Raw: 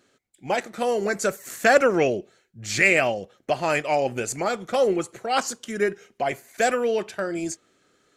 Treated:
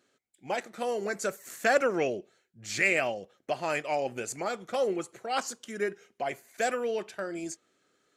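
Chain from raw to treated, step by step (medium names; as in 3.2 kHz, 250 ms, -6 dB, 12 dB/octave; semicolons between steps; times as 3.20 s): bass shelf 100 Hz -10.5 dB; trim -7 dB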